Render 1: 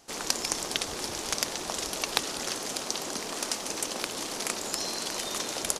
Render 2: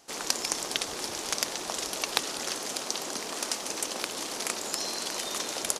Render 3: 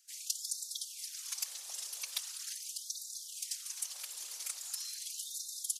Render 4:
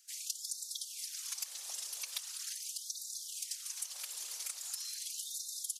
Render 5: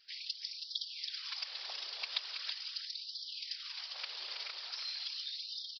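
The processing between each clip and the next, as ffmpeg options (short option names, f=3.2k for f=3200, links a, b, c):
-af "lowshelf=f=140:g=-9.5"
-af "afftfilt=real='hypot(re,im)*cos(2*PI*random(0))':imag='hypot(re,im)*sin(2*PI*random(1))':win_size=512:overlap=0.75,aderivative,afftfilt=real='re*gte(b*sr/1024,340*pow(3600/340,0.5+0.5*sin(2*PI*0.41*pts/sr)))':imag='im*gte(b*sr/1024,340*pow(3600/340,0.5+0.5*sin(2*PI*0.41*pts/sr)))':win_size=1024:overlap=0.75"
-af "acompressor=threshold=-43dB:ratio=2,volume=3dB"
-af "aecho=1:1:167|325:0.112|0.473,aresample=11025,aresample=44100,volume=6.5dB"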